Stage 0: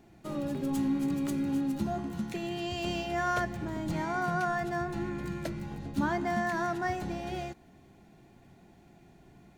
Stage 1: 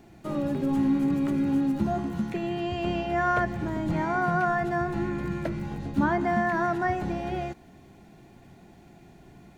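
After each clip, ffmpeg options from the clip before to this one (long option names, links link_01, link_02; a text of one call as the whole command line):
ffmpeg -i in.wav -filter_complex "[0:a]acrossover=split=2600[link_01][link_02];[link_02]acompressor=threshold=-59dB:ratio=4:attack=1:release=60[link_03];[link_01][link_03]amix=inputs=2:normalize=0,volume=5.5dB" out.wav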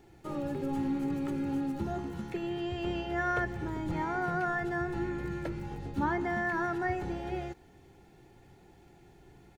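ffmpeg -i in.wav -af "aecho=1:1:2.3:0.53,volume=-5.5dB" out.wav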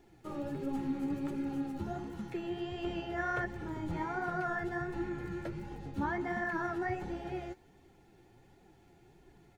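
ffmpeg -i in.wav -af "flanger=delay=2.7:depth=9.1:regen=39:speed=1.4:shape=triangular" out.wav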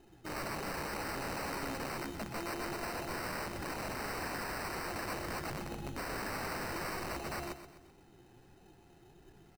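ffmpeg -i in.wav -af "aresample=11025,aeval=exprs='(mod(59.6*val(0)+1,2)-1)/59.6':channel_layout=same,aresample=44100,acrusher=samples=13:mix=1:aa=0.000001,aecho=1:1:127|254|381|508|635:0.282|0.127|0.0571|0.0257|0.0116,volume=1dB" out.wav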